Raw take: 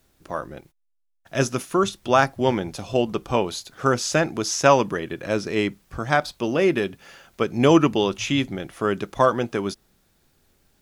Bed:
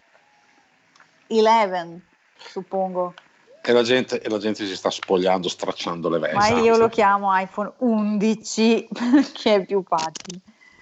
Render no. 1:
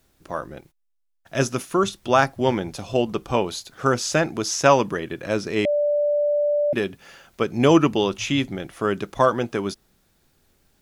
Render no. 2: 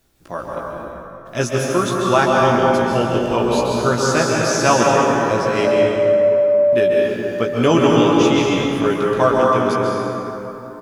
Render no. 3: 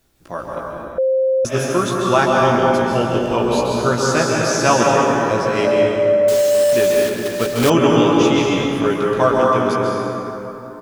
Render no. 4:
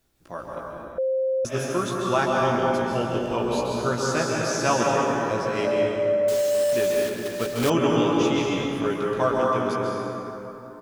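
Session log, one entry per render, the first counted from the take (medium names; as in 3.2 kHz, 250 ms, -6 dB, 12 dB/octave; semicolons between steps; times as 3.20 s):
5.65–6.73 s: bleep 587 Hz -17.5 dBFS
doubling 17 ms -4.5 dB; plate-style reverb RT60 3.5 s, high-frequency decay 0.5×, pre-delay 120 ms, DRR -3 dB
0.98–1.45 s: bleep 526 Hz -13 dBFS; 6.28–7.70 s: block-companded coder 3-bit
trim -7.5 dB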